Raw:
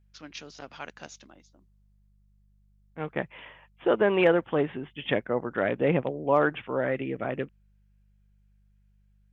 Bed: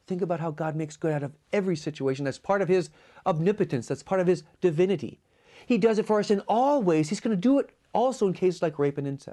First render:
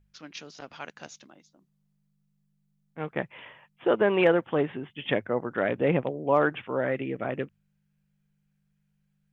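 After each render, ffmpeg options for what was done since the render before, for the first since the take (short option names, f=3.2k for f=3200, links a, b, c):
-af "bandreject=f=50:t=h:w=4,bandreject=f=100:t=h:w=4"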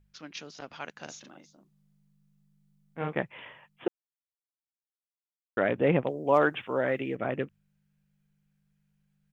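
-filter_complex "[0:a]asplit=3[a][b][c];[a]afade=t=out:st=1.07:d=0.02[d];[b]asplit=2[e][f];[f]adelay=40,volume=-2dB[g];[e][g]amix=inputs=2:normalize=0,afade=t=in:st=1.07:d=0.02,afade=t=out:st=3.13:d=0.02[h];[c]afade=t=in:st=3.13:d=0.02[i];[d][h][i]amix=inputs=3:normalize=0,asettb=1/sr,asplit=3[j][k][l];[j]atrim=end=6.074[m];[k]atrim=start=6.07:end=7.16,asetpts=PTS-STARTPTS,afade=t=in:d=0.004:c=qsin,afade=t=out:st=1.086:d=0.004:c=qsin,bass=f=250:g=-3,treble=f=4k:g=9[n];[l]atrim=start=7.156[o];[m][n]acrossfade=d=0.004:c1=hsin:c2=qsin[p];[p][o]acrossfade=d=0.004:c1=qsin:c2=hsin,asplit=3[q][r][s];[q]atrim=end=3.88,asetpts=PTS-STARTPTS,afade=t=out:st=3.876:d=0.004:c=hsin[t];[r]atrim=start=3.88:end=5.57,asetpts=PTS-STARTPTS,volume=0[u];[s]atrim=start=5.57,asetpts=PTS-STARTPTS,afade=t=in:d=0.004:c=hsin[v];[t][u][v]concat=n=3:v=0:a=1"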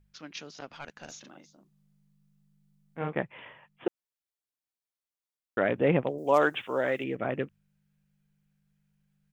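-filter_complex "[0:a]asettb=1/sr,asplit=3[a][b][c];[a]atrim=end=0.664[d];[b]atrim=start=0.66:end=1.12,asetpts=PTS-STARTPTS,afade=t=in:d=0.004:c=qsin,afade=t=out:st=0.456:d=0.004:c=qsin,aeval=exprs='(tanh(31.6*val(0)+0.4)-tanh(0.4))/31.6':c=same[e];[c]atrim=start=1.116[f];[d][e]acrossfade=d=0.004:c1=hsin:c2=qsin[g];[g][f]acrossfade=d=0.004:c1=qsin:c2=hsin,asettb=1/sr,asplit=3[h][i][j];[h]atrim=end=2.994[k];[i]atrim=start=2.99:end=3.86,asetpts=PTS-STARTPTS,afade=t=in:d=0.004:c=qsin,afade=t=out:st=0.866:d=0.004:c=qsin,highshelf=f=3.6k:g=-6.5[l];[j]atrim=start=3.856[m];[k][l]acrossfade=d=0.004:c1=hsin:c2=qsin[n];[n][m]acrossfade=d=0.004:c1=qsin:c2=hsin,asettb=1/sr,asplit=3[o][p][q];[o]atrim=end=6.184[r];[p]atrim=start=6.18:end=7.04,asetpts=PTS-STARTPTS,afade=t=in:d=0.004:c=qsin,afade=t=out:st=0.856:d=0.004:c=qsin,bass=f=250:g=-5,treble=f=4k:g=12[s];[q]atrim=start=7.036[t];[r][s]acrossfade=d=0.004:c1=hsin:c2=qsin[u];[u][t]acrossfade=d=0.004:c1=qsin:c2=hsin"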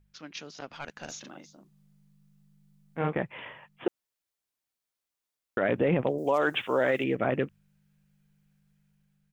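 -af "alimiter=limit=-20.5dB:level=0:latency=1:release=20,dynaudnorm=f=330:g=5:m=5dB"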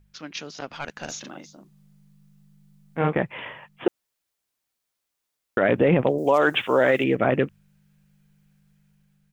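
-af "volume=6.5dB"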